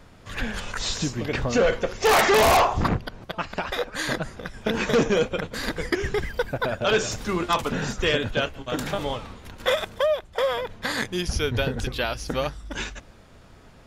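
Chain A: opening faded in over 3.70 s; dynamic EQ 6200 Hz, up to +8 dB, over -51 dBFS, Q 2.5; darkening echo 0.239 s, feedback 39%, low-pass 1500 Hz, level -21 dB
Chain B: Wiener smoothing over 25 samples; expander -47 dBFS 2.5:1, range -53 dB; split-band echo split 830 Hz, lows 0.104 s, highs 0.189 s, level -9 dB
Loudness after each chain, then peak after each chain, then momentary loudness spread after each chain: -25.5, -25.5 LUFS; -7.5, -9.0 dBFS; 13, 15 LU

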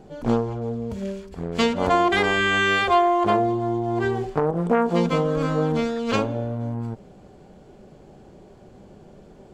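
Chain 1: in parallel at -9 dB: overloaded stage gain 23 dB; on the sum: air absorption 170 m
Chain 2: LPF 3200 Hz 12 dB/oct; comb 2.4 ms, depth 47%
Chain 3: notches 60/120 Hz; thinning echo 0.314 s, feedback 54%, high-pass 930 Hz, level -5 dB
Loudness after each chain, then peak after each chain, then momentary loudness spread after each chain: -21.5, -22.0, -22.0 LUFS; -7.0, -6.5, -7.0 dBFS; 10, 12, 13 LU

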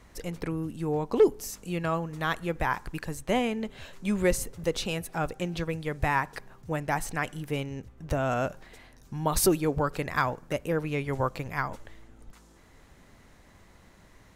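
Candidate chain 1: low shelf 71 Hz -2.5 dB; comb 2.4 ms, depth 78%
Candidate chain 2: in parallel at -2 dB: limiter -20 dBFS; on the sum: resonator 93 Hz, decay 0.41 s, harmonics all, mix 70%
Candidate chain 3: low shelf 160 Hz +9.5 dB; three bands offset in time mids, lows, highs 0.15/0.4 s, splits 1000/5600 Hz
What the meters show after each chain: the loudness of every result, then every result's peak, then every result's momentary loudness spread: -27.5, -33.0, -28.5 LUFS; -7.5, -15.0, -7.5 dBFS; 14, 10, 11 LU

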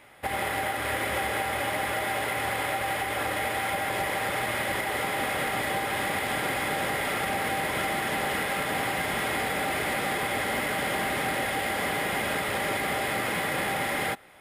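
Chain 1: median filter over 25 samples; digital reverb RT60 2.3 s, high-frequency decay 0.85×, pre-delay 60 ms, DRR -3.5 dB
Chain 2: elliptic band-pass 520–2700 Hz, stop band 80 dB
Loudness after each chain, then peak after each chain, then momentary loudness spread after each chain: -27.0, -29.5 LUFS; -12.0, -18.5 dBFS; 2, 1 LU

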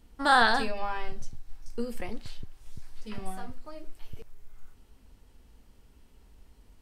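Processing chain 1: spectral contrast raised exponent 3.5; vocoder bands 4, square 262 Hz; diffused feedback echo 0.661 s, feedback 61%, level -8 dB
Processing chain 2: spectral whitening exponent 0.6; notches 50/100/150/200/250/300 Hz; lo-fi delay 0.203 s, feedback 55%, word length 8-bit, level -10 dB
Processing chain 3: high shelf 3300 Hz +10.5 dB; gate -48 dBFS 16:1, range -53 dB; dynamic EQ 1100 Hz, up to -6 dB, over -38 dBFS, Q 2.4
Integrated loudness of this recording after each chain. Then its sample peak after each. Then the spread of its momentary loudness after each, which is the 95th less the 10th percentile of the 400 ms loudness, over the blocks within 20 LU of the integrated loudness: -33.0, -28.5, -27.5 LUFS; -13.5, -8.0, -8.0 dBFS; 25, 23, 25 LU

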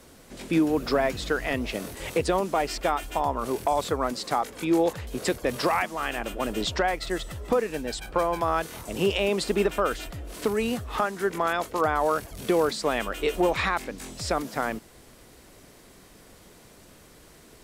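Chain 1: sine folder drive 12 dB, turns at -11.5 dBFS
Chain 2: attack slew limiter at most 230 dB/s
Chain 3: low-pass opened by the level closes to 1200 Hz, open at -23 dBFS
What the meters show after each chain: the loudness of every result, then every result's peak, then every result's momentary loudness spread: -17.0, -28.0, -27.0 LUFS; -10.0, -12.0, -11.5 dBFS; 20, 8, 8 LU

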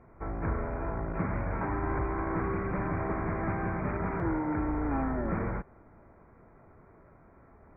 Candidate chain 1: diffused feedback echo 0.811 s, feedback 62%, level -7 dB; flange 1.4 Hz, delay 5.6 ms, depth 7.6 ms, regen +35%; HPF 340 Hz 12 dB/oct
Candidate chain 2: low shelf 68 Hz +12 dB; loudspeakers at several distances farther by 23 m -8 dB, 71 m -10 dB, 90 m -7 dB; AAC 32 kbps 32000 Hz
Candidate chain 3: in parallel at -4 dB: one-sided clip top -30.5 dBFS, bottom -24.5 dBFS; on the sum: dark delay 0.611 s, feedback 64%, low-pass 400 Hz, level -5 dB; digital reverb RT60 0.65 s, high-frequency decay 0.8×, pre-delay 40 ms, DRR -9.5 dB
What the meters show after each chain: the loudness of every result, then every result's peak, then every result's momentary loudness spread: -39.5, -28.5, -19.5 LUFS; -24.5, -13.5, -4.0 dBFS; 11, 3, 12 LU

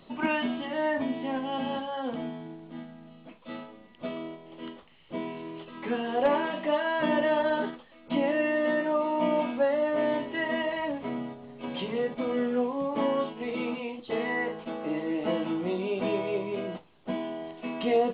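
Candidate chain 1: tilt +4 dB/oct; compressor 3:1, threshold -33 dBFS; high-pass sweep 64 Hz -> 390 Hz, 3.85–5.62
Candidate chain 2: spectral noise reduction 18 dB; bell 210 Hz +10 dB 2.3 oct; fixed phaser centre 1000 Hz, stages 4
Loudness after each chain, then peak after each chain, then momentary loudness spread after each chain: -34.0, -33.5 LUFS; -18.5, -15.5 dBFS; 12, 18 LU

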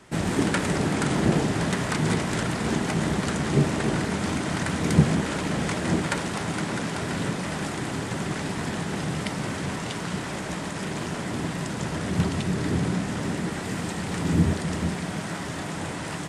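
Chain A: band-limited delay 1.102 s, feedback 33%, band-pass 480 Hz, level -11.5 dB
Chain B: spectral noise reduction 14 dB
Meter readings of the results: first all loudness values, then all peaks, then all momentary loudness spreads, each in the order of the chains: -26.5, -32.5 LUFS; -4.0, -4.5 dBFS; 8, 18 LU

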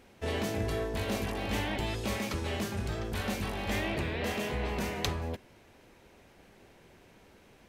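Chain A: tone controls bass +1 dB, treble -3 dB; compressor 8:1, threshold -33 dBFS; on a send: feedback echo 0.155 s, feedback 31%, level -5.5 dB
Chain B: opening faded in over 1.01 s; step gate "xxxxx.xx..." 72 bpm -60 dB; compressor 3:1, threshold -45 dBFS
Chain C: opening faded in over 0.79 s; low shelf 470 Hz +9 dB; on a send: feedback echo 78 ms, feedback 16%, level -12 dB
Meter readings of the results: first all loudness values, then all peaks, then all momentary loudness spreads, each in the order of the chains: -37.0, -46.5, -28.5 LUFS; -18.5, -24.0, -12.5 dBFS; 20, 16, 4 LU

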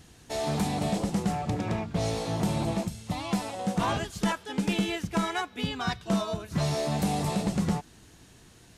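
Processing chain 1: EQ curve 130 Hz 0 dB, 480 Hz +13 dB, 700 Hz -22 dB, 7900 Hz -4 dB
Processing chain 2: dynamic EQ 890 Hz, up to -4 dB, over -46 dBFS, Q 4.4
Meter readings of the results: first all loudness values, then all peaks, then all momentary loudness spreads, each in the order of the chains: -26.0, -30.0 LUFS; -10.0, -15.0 dBFS; 6, 4 LU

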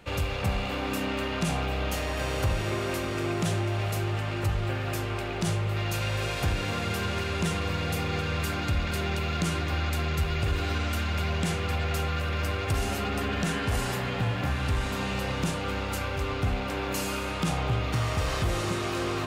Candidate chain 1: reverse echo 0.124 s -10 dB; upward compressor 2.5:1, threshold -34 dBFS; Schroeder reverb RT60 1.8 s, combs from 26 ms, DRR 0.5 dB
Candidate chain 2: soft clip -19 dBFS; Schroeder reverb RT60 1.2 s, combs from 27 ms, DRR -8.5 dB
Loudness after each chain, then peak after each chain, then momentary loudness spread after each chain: -26.0, -21.0 LUFS; -13.0, -7.0 dBFS; 4, 3 LU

